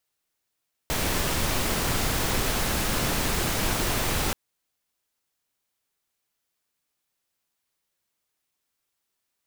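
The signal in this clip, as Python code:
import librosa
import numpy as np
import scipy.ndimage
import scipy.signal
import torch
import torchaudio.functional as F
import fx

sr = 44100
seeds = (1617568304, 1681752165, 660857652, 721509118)

y = fx.noise_colour(sr, seeds[0], length_s=3.43, colour='pink', level_db=-25.5)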